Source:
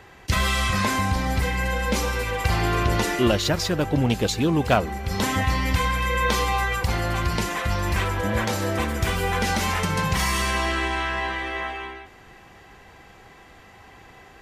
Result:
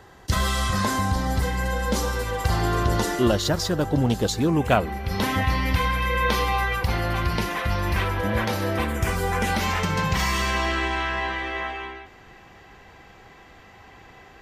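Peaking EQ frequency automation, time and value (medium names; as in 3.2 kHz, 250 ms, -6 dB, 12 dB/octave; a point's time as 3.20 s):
peaking EQ -11 dB 0.51 oct
4.33 s 2.4 kHz
4.92 s 7.5 kHz
8.79 s 7.5 kHz
9.26 s 2.4 kHz
9.67 s 10 kHz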